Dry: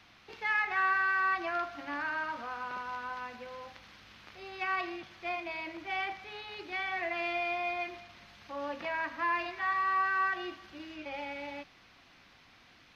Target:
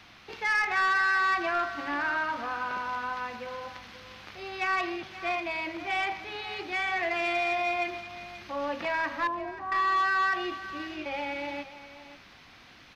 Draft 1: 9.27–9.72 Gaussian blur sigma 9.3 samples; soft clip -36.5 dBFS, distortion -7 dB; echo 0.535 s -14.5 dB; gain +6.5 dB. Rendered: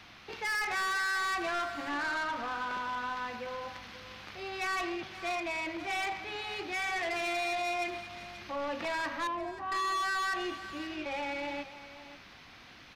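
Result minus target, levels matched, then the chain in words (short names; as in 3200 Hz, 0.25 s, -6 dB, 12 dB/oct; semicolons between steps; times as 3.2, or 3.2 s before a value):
soft clip: distortion +9 dB
9.27–9.72 Gaussian blur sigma 9.3 samples; soft clip -27 dBFS, distortion -16 dB; echo 0.535 s -14.5 dB; gain +6.5 dB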